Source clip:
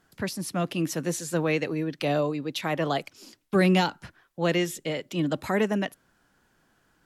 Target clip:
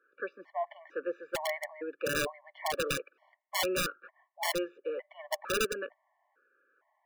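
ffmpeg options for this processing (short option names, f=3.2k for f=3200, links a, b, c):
-af "asuperpass=centerf=920:order=8:qfactor=0.56,aeval=exprs='(mod(10.6*val(0)+1,2)-1)/10.6':c=same,afftfilt=real='re*gt(sin(2*PI*1.1*pts/sr)*(1-2*mod(floor(b*sr/1024/580),2)),0)':imag='im*gt(sin(2*PI*1.1*pts/sr)*(1-2*mod(floor(b*sr/1024/580),2)),0)':win_size=1024:overlap=0.75"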